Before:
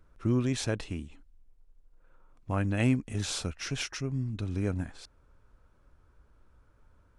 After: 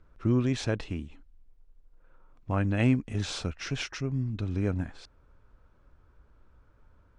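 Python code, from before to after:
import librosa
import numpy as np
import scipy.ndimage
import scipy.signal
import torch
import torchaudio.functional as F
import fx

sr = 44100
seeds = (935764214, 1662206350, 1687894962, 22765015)

y = fx.air_absorb(x, sr, metres=87.0)
y = y * 10.0 ** (2.0 / 20.0)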